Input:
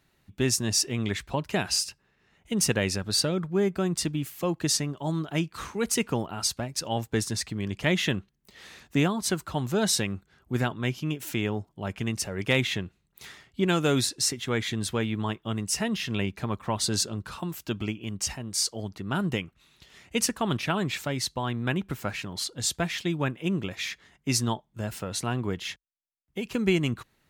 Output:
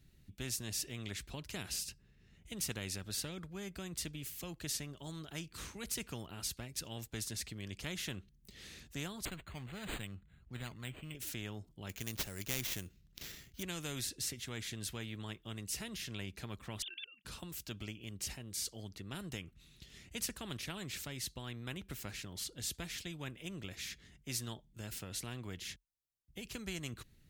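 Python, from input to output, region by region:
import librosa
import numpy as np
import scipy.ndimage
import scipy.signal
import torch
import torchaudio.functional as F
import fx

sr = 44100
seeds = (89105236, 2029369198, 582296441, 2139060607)

y = fx.chain(x, sr, fx.peak_eq(hz=380.0, db=-11.5, octaves=1.1),
    fx.resample_linear(factor=8), at=(9.25, 11.15))
y = fx.chain(y, sr, fx.high_shelf(hz=4400.0, db=6.0),
    fx.sample_hold(seeds[0], rate_hz=9300.0, jitter_pct=0), at=(11.89, 13.63))
y = fx.chain(y, sr, fx.sine_speech(),
    fx.highpass_res(hz=2900.0, q=5.7),
    fx.level_steps(step_db=15), at=(16.82, 17.25))
y = fx.tone_stack(y, sr, knobs='10-0-1')
y = fx.spectral_comp(y, sr, ratio=2.0)
y = F.gain(torch.from_numpy(y), 8.0).numpy()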